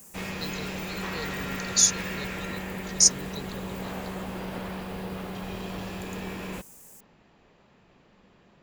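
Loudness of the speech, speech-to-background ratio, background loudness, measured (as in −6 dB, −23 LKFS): −23.5 LKFS, 11.5 dB, −35.0 LKFS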